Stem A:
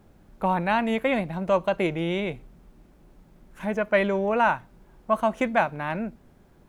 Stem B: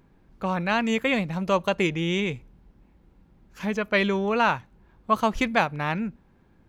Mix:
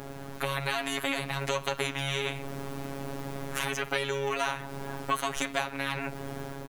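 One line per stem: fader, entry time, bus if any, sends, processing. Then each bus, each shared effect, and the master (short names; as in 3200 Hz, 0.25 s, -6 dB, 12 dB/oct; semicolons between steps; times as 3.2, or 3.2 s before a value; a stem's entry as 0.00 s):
-0.5 dB, 0.00 s, no send, spectral compressor 4:1
-3.0 dB, 10 ms, no send, dry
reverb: off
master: AGC gain up to 5 dB; robotiser 138 Hz; compressor 4:1, threshold -26 dBFS, peak gain reduction 10.5 dB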